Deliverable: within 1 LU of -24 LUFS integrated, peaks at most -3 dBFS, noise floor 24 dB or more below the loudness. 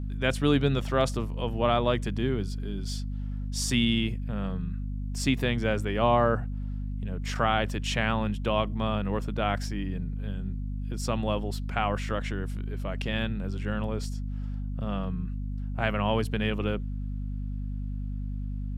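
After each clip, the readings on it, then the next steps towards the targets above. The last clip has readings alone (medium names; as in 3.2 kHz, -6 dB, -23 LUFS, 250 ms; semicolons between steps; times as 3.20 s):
hum 50 Hz; highest harmonic 250 Hz; hum level -30 dBFS; loudness -29.5 LUFS; peak level -9.5 dBFS; loudness target -24.0 LUFS
-> de-hum 50 Hz, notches 5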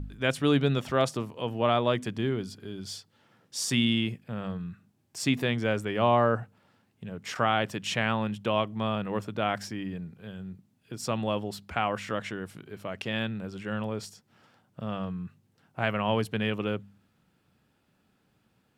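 hum not found; loudness -29.5 LUFS; peak level -10.0 dBFS; loudness target -24.0 LUFS
-> trim +5.5 dB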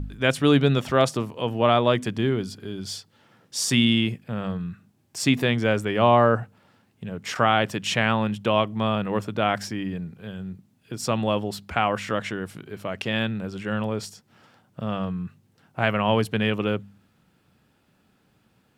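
loudness -24.0 LUFS; peak level -4.5 dBFS; noise floor -65 dBFS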